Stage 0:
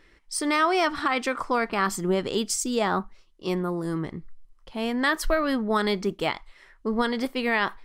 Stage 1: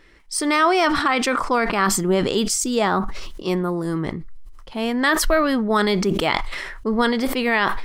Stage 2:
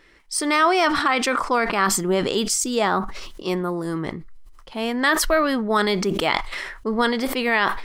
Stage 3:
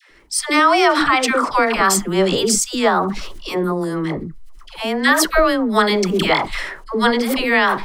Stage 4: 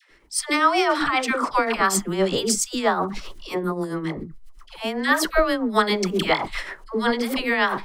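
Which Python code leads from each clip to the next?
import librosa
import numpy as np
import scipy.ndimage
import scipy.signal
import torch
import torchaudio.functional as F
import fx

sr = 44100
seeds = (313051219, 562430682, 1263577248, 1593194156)

y1 = fx.sustainer(x, sr, db_per_s=35.0)
y1 = y1 * librosa.db_to_amplitude(4.5)
y2 = fx.low_shelf(y1, sr, hz=230.0, db=-6.0)
y3 = fx.dispersion(y2, sr, late='lows', ms=108.0, hz=680.0)
y3 = y3 * librosa.db_to_amplitude(4.5)
y4 = y3 * (1.0 - 0.57 / 2.0 + 0.57 / 2.0 * np.cos(2.0 * np.pi * 7.6 * (np.arange(len(y3)) / sr)))
y4 = y4 * librosa.db_to_amplitude(-3.0)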